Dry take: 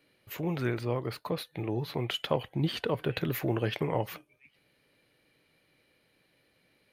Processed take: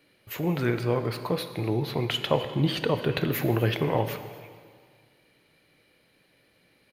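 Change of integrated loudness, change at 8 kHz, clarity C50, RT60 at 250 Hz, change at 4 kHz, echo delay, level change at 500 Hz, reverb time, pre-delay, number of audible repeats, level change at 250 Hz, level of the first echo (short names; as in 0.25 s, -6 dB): +5.0 dB, +5.0 dB, 10.0 dB, 1.9 s, +5.0 dB, 0.251 s, +5.0 dB, 1.8 s, 7 ms, 1, +5.0 dB, -21.0 dB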